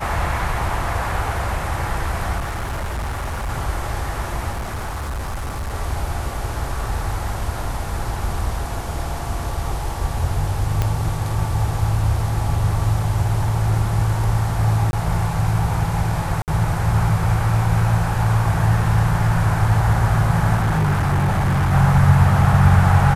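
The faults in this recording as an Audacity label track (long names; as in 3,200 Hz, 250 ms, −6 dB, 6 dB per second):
2.380000	3.500000	clipping −21.5 dBFS
4.510000	5.750000	clipping −22.5 dBFS
10.820000	10.820000	click −7 dBFS
14.910000	14.930000	drop-out 21 ms
16.420000	16.480000	drop-out 58 ms
20.550000	21.730000	clipping −14.5 dBFS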